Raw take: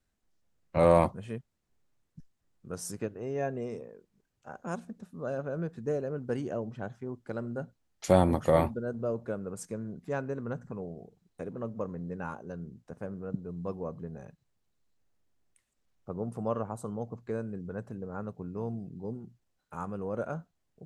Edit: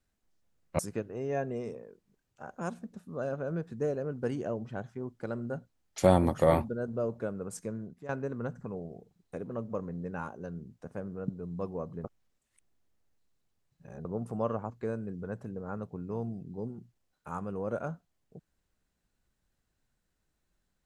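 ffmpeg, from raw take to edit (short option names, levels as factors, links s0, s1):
-filter_complex "[0:a]asplit=6[s0][s1][s2][s3][s4][s5];[s0]atrim=end=0.792[s6];[s1]atrim=start=2.848:end=10.15,asetpts=PTS-STARTPTS,afade=t=out:st=6.972:d=0.33:silence=0.199526[s7];[s2]atrim=start=10.15:end=14.102,asetpts=PTS-STARTPTS,afade=t=in:d=0.004:c=hsin:silence=0.199526[s8];[s3]atrim=start=14.098:end=16.112,asetpts=PTS-STARTPTS,areverse[s9];[s4]atrim=start=16.108:end=16.762[s10];[s5]atrim=start=17.158[s11];[s7][s8]concat=n=2:v=0:a=1[s12];[s6][s12]acrossfade=d=0.004:c1=hsin:c2=hsin[s13];[s13][s9]acrossfade=d=0.004:c1=hsin:c2=hsin[s14];[s14][s10]acrossfade=d=0.004:c1=hsin:c2=hsin[s15];[s15][s11]acrossfade=d=0.004:c1=hsin:c2=hsin"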